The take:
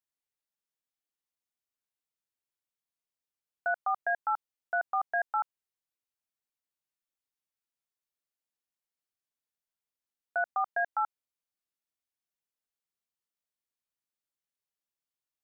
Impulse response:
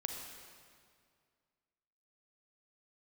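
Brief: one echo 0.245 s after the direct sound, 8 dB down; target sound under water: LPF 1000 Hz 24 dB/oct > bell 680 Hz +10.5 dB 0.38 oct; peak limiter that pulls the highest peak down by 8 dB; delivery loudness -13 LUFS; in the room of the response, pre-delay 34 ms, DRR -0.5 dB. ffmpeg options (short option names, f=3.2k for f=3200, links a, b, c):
-filter_complex "[0:a]alimiter=level_in=5.5dB:limit=-24dB:level=0:latency=1,volume=-5.5dB,aecho=1:1:245:0.398,asplit=2[a][b];[1:a]atrim=start_sample=2205,adelay=34[c];[b][c]afir=irnorm=-1:irlink=0,volume=0dB[d];[a][d]amix=inputs=2:normalize=0,lowpass=f=1k:w=0.5412,lowpass=f=1k:w=1.3066,equalizer=f=680:t=o:w=0.38:g=10.5,volume=21dB"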